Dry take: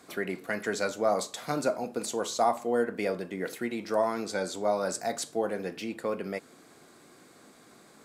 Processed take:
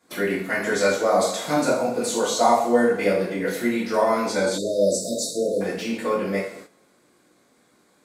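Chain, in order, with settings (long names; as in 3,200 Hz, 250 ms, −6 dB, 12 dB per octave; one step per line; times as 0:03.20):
coupled-rooms reverb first 0.57 s, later 2 s, DRR −8.5 dB
noise gate −41 dBFS, range −14 dB
time-frequency box erased 0:04.58–0:05.61, 670–3,500 Hz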